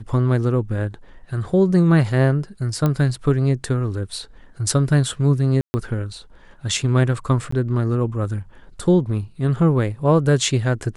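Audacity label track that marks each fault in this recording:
2.860000	2.860000	pop -9 dBFS
5.610000	5.740000	dropout 130 ms
7.510000	7.520000	dropout 14 ms

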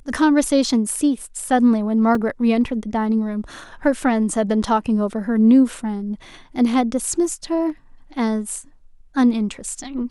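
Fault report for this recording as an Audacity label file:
2.150000	2.150000	dropout 2.7 ms

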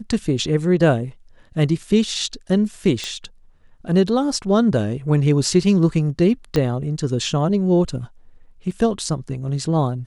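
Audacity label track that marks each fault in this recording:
3.040000	3.040000	pop -13 dBFS
6.560000	6.560000	pop -8 dBFS
8.710000	8.710000	dropout 2.9 ms

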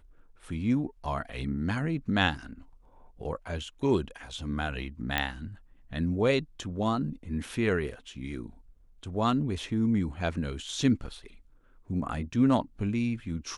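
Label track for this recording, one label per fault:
5.180000	5.180000	pop -12 dBFS

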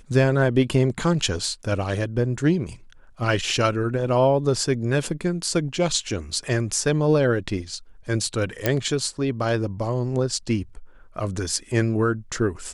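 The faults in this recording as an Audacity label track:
8.660000	8.660000	pop -5 dBFS

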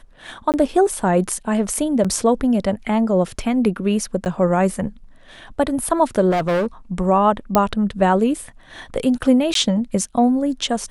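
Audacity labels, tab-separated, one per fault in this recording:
0.520000	0.540000	dropout 18 ms
2.040000	2.050000	dropout 6.3 ms
4.250000	4.260000	dropout 9.5 ms
6.300000	6.670000	clipped -16 dBFS
7.550000	7.550000	pop -2 dBFS
9.540000	9.550000	dropout 13 ms

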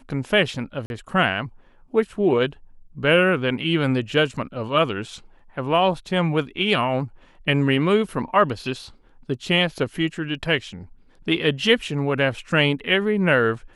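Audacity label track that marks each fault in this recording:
0.860000	0.900000	dropout 41 ms

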